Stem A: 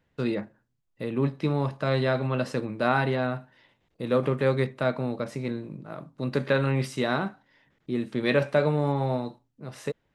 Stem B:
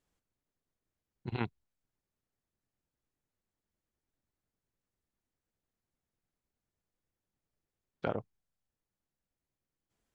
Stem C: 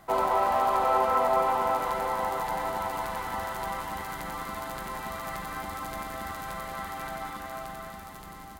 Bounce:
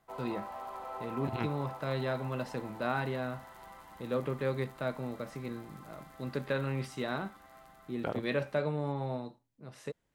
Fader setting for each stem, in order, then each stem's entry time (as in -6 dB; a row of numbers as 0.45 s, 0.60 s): -9.0 dB, -1.5 dB, -18.0 dB; 0.00 s, 0.00 s, 0.00 s